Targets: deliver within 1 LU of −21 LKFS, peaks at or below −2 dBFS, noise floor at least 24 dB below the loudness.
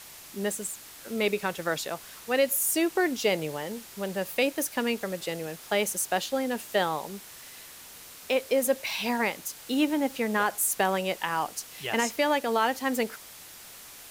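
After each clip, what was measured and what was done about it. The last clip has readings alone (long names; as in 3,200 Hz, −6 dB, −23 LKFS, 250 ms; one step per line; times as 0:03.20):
background noise floor −47 dBFS; target noise floor −52 dBFS; integrated loudness −28.0 LKFS; sample peak −12.5 dBFS; target loudness −21.0 LKFS
→ noise reduction from a noise print 6 dB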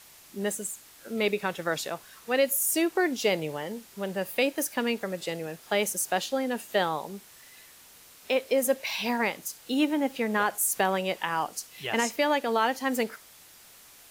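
background noise floor −53 dBFS; integrated loudness −28.0 LKFS; sample peak −12.5 dBFS; target loudness −21.0 LKFS
→ level +7 dB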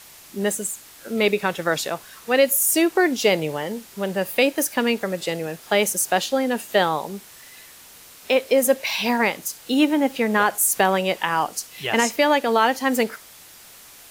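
integrated loudness −21.0 LKFS; sample peak −5.5 dBFS; background noise floor −46 dBFS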